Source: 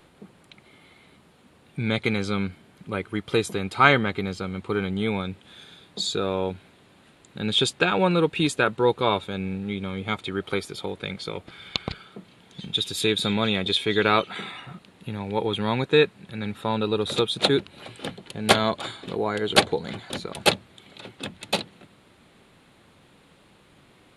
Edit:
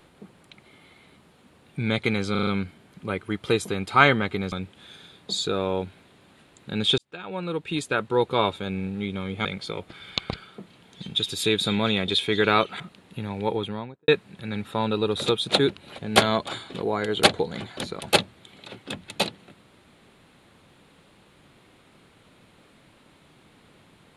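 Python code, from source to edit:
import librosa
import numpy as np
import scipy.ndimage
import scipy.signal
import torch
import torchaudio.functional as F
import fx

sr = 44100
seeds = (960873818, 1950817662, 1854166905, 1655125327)

y = fx.studio_fade_out(x, sr, start_s=15.32, length_s=0.66)
y = fx.edit(y, sr, fx.stutter(start_s=2.31, slice_s=0.04, count=5),
    fx.cut(start_s=4.36, length_s=0.84),
    fx.fade_in_span(start_s=7.66, length_s=1.42),
    fx.cut(start_s=10.13, length_s=0.9),
    fx.cut(start_s=14.38, length_s=0.32),
    fx.cut(start_s=17.88, length_s=0.43), tone=tone)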